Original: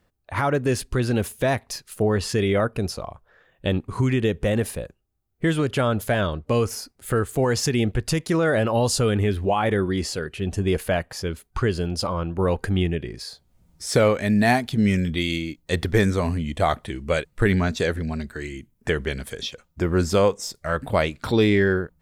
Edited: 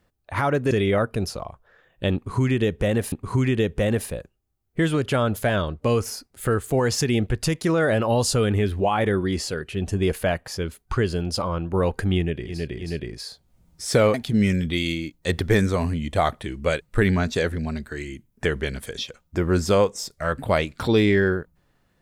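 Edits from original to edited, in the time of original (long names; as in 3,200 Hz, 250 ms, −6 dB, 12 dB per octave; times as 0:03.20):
0:00.71–0:02.33: remove
0:03.77–0:04.74: repeat, 2 plays
0:12.89–0:13.21: repeat, 3 plays, crossfade 0.24 s
0:14.15–0:14.58: remove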